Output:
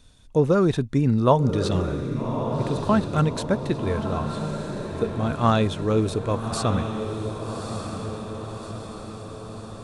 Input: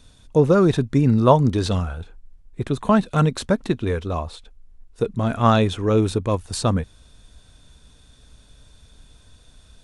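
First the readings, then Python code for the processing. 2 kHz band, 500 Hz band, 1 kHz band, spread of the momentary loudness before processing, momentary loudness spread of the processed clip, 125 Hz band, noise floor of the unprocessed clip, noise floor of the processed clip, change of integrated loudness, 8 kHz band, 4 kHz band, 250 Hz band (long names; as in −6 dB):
−2.5 dB, −2.5 dB, −2.5 dB, 12 LU, 15 LU, −2.5 dB, −52 dBFS, −39 dBFS, −4.0 dB, −2.5 dB, −2.5 dB, −2.5 dB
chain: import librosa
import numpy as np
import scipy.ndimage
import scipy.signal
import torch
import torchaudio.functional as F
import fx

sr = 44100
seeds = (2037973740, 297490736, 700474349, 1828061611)

y = fx.echo_diffused(x, sr, ms=1205, feedback_pct=58, wet_db=-7.0)
y = y * 10.0 ** (-3.5 / 20.0)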